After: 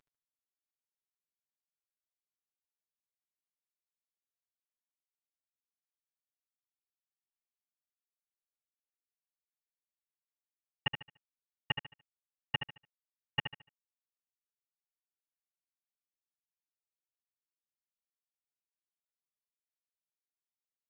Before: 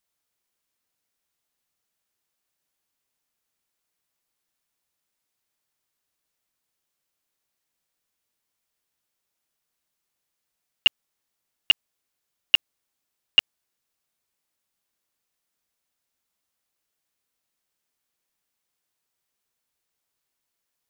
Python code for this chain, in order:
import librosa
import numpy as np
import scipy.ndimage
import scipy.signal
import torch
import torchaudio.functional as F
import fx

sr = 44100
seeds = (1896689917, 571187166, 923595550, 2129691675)

p1 = fx.cvsd(x, sr, bps=16000)
p2 = fx.peak_eq(p1, sr, hz=1600.0, db=10.5, octaves=2.0)
p3 = p2 + 0.65 * np.pad(p2, (int(7.0 * sr / 1000.0), 0))[:len(p2)]
p4 = p3 + fx.echo_feedback(p3, sr, ms=73, feedback_pct=30, wet_db=-8, dry=0)
y = p4 * 10.0 ** (1.0 / 20.0)